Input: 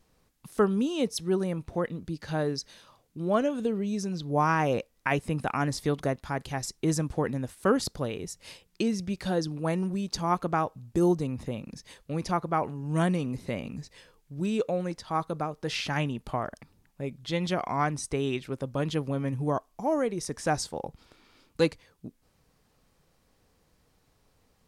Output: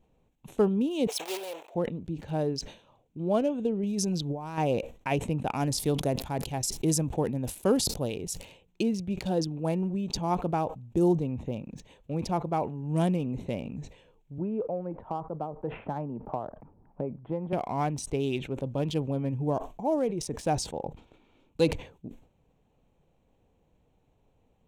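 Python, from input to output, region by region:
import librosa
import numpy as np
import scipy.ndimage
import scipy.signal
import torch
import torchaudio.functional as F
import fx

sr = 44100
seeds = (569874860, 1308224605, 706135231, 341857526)

y = fx.chain(x, sr, fx.block_float(bits=3),
    fx.highpass(hz=490.0, slope=24), at=(1.07, 1.75))
y = fx.chain(y, sr, fx.over_compress(threshold_db=-31.0, ratio=-1.0),
    fx.high_shelf(hz=5000.0, db=9.0), at=(3.83, 4.58))
y = fx.chain(y, sr, fx.high_shelf(hz=6400.0, db=10.0),
    fx.sustainer(db_per_s=100.0), at=(5.56, 8.45))
y = fx.chain(y, sr, fx.lowpass(hz=1300.0, slope=24),
    fx.low_shelf(hz=380.0, db=-8.0),
    fx.band_squash(depth_pct=100), at=(14.38, 17.53))
y = fx.wiener(y, sr, points=9)
y = fx.band_shelf(y, sr, hz=1500.0, db=-10.0, octaves=1.1)
y = fx.sustainer(y, sr, db_per_s=130.0)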